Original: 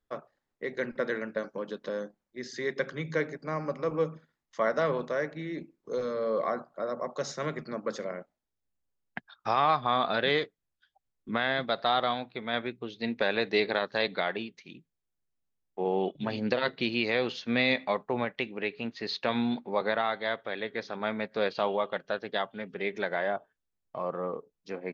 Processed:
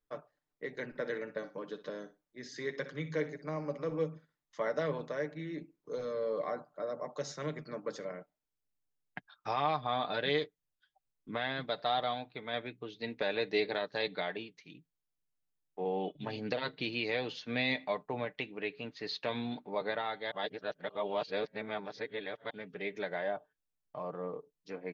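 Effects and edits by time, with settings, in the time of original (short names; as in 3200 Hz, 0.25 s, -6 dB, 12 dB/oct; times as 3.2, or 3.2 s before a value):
0.83–3.98 feedback echo 61 ms, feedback 17%, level -14 dB
20.31–22.5 reverse
whole clip: dynamic EQ 1300 Hz, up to -5 dB, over -43 dBFS, Q 2.1; comb 6.7 ms, depth 49%; gain -6 dB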